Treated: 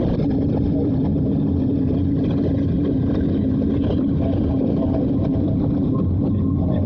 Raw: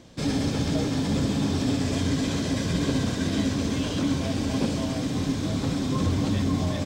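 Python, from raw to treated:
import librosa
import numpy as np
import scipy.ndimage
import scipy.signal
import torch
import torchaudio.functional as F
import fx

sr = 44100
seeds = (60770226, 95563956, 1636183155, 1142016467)

p1 = fx.envelope_sharpen(x, sr, power=2.0)
p2 = scipy.signal.lfilter(np.full(6, 1.0 / 6), 1.0, p1)
p3 = fx.peak_eq(p2, sr, hz=820.0, db=6.5, octaves=1.9)
p4 = p3 + fx.echo_diffused(p3, sr, ms=478, feedback_pct=44, wet_db=-7, dry=0)
y = fx.env_flatten(p4, sr, amount_pct=100)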